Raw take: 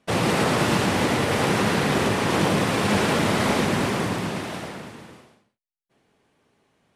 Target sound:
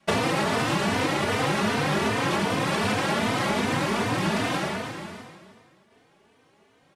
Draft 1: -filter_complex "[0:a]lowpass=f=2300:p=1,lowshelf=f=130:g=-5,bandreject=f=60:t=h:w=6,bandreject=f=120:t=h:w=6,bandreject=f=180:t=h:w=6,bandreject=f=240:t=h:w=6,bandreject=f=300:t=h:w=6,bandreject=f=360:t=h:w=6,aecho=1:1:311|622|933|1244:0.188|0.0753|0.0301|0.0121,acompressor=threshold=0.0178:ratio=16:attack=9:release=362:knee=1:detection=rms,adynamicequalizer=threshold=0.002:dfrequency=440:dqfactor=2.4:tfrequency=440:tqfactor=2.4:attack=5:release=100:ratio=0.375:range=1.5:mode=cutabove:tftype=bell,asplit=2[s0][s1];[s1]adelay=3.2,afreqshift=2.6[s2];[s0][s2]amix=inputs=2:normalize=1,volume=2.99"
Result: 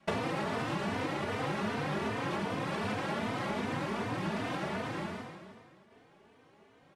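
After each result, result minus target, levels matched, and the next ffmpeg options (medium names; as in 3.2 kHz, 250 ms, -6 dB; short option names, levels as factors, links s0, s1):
compression: peak gain reduction +9 dB; 8 kHz band -6.0 dB
-filter_complex "[0:a]lowpass=f=2300:p=1,lowshelf=f=130:g=-5,bandreject=f=60:t=h:w=6,bandreject=f=120:t=h:w=6,bandreject=f=180:t=h:w=6,bandreject=f=240:t=h:w=6,bandreject=f=300:t=h:w=6,bandreject=f=360:t=h:w=6,aecho=1:1:311|622|933|1244:0.188|0.0753|0.0301|0.0121,acompressor=threshold=0.0562:ratio=16:attack=9:release=362:knee=1:detection=rms,adynamicequalizer=threshold=0.002:dfrequency=440:dqfactor=2.4:tfrequency=440:tqfactor=2.4:attack=5:release=100:ratio=0.375:range=1.5:mode=cutabove:tftype=bell,asplit=2[s0][s1];[s1]adelay=3.2,afreqshift=2.6[s2];[s0][s2]amix=inputs=2:normalize=1,volume=2.99"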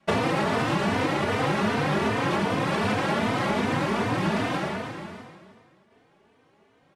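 8 kHz band -6.5 dB
-filter_complex "[0:a]lowpass=f=7500:p=1,lowshelf=f=130:g=-5,bandreject=f=60:t=h:w=6,bandreject=f=120:t=h:w=6,bandreject=f=180:t=h:w=6,bandreject=f=240:t=h:w=6,bandreject=f=300:t=h:w=6,bandreject=f=360:t=h:w=6,aecho=1:1:311|622|933|1244:0.188|0.0753|0.0301|0.0121,acompressor=threshold=0.0562:ratio=16:attack=9:release=362:knee=1:detection=rms,adynamicequalizer=threshold=0.002:dfrequency=440:dqfactor=2.4:tfrequency=440:tqfactor=2.4:attack=5:release=100:ratio=0.375:range=1.5:mode=cutabove:tftype=bell,asplit=2[s0][s1];[s1]adelay=3.2,afreqshift=2.6[s2];[s0][s2]amix=inputs=2:normalize=1,volume=2.99"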